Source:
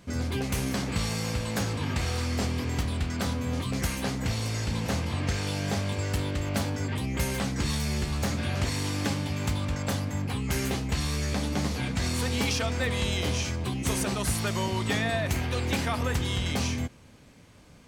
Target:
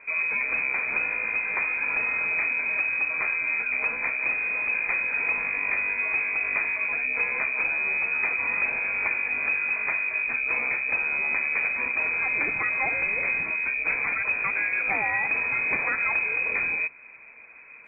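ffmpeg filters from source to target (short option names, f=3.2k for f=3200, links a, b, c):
-filter_complex "[0:a]asplit=2[a][b];[b]acompressor=threshold=-36dB:ratio=6,volume=0dB[c];[a][c]amix=inputs=2:normalize=0,lowpass=f=2.2k:t=q:w=0.5098,lowpass=f=2.2k:t=q:w=0.6013,lowpass=f=2.2k:t=q:w=0.9,lowpass=f=2.2k:t=q:w=2.563,afreqshift=-2600" -ar 22050 -c:a aac -b:a 32k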